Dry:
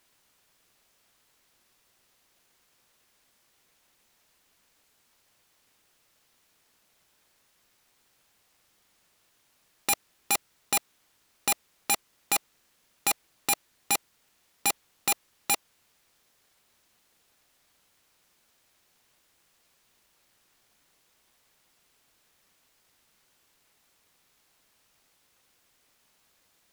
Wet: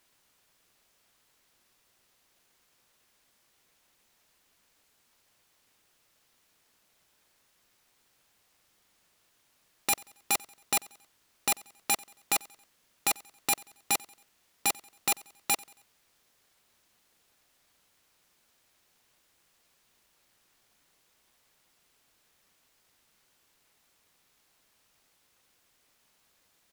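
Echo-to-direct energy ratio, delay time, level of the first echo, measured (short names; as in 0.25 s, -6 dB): -22.5 dB, 91 ms, -23.5 dB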